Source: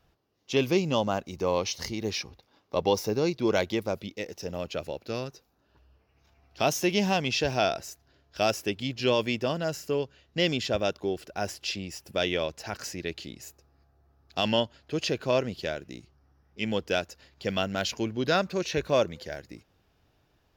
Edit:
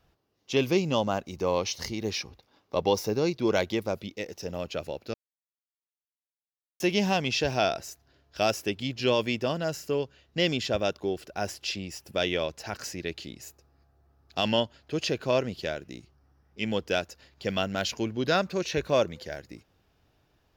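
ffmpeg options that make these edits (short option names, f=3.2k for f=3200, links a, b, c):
-filter_complex "[0:a]asplit=3[a][b][c];[a]atrim=end=5.14,asetpts=PTS-STARTPTS,afade=t=out:st=5.136:d=0.004:c=hsin[d];[b]atrim=start=5.14:end=6.8,asetpts=PTS-STARTPTS,volume=0[e];[c]atrim=start=6.8,asetpts=PTS-STARTPTS,afade=t=in:d=0.004:c=hsin[f];[d][e][f]concat=n=3:v=0:a=1"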